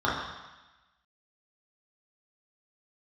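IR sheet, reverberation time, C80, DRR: 1.1 s, 4.5 dB, −7.5 dB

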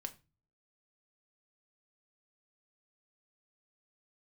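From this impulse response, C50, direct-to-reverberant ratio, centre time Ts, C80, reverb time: 17.5 dB, 6.0 dB, 5 ms, 23.0 dB, 0.30 s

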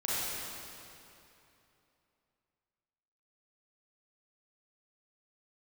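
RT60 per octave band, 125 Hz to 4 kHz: 3.2, 3.0, 2.9, 2.9, 2.7, 2.4 seconds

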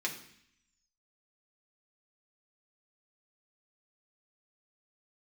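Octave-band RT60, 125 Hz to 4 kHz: 0.85, 0.85, 0.60, 0.70, 0.85, 0.85 seconds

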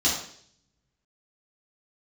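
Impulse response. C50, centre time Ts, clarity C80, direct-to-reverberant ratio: 3.5 dB, 41 ms, 7.5 dB, −7.0 dB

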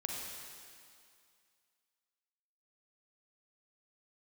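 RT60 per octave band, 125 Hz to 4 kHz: 2.0, 2.2, 2.2, 2.4, 2.3, 2.3 seconds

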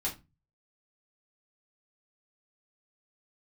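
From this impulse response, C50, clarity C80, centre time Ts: 12.5 dB, 19.5 dB, 18 ms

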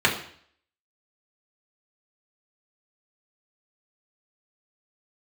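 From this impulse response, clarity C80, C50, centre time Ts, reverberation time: 12.0 dB, 9.0 dB, 21 ms, 0.55 s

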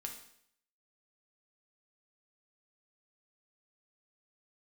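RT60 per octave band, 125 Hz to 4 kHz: 0.65, 0.65, 0.65, 0.65, 0.65, 0.65 seconds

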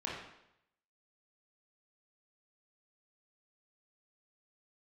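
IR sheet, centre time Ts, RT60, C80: 57 ms, 0.80 s, 4.5 dB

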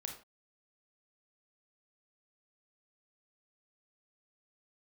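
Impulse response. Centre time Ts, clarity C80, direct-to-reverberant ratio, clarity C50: 21 ms, 12.0 dB, 2.5 dB, 7.0 dB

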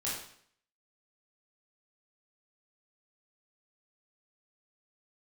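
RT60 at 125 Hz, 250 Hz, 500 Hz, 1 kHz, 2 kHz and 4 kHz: 0.65, 0.60, 0.60, 0.60, 0.60, 0.60 seconds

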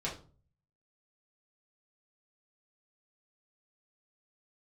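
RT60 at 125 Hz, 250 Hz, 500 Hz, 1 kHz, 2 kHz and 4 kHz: 0.80, 0.50, 0.45, 0.40, 0.30, 0.30 seconds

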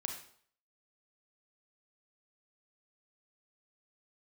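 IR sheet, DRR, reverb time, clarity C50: 3.0 dB, 0.55 s, 6.0 dB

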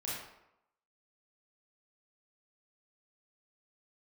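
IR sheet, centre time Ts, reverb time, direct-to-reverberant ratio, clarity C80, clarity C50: 70 ms, 0.85 s, −7.5 dB, 3.0 dB, −0.5 dB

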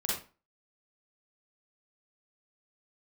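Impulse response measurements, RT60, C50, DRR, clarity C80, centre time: 0.35 s, −0.5 dB, −5.0 dB, 7.5 dB, 50 ms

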